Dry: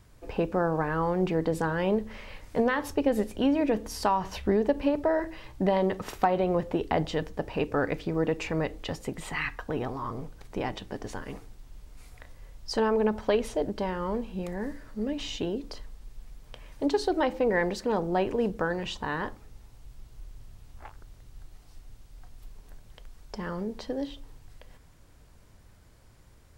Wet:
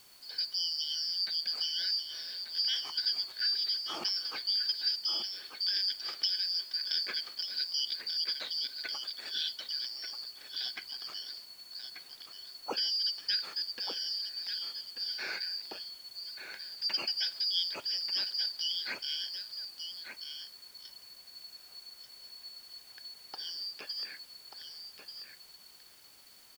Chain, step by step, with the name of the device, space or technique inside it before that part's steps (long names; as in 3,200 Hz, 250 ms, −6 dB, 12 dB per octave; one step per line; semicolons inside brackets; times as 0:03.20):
single-tap delay 1,187 ms −8 dB
split-band scrambled radio (band-splitting scrambler in four parts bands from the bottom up 4321; band-pass filter 310–3,100 Hz; white noise bed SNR 23 dB)
level +1 dB